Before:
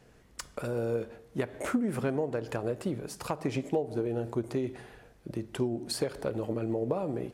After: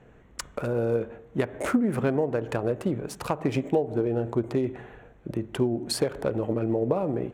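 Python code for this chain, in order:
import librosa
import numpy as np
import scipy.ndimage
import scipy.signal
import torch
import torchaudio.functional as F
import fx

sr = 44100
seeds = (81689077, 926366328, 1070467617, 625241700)

y = fx.wiener(x, sr, points=9)
y = y * librosa.db_to_amplitude(5.5)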